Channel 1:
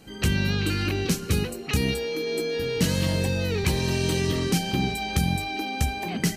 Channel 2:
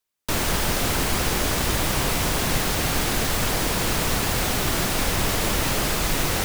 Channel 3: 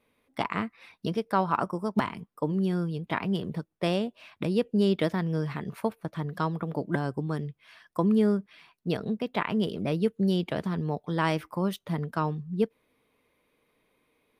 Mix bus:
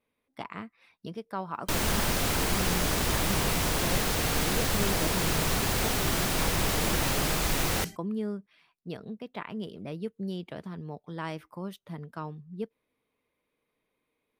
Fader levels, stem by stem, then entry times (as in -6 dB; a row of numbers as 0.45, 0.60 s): -16.5, -4.5, -9.5 dB; 1.60, 1.40, 0.00 s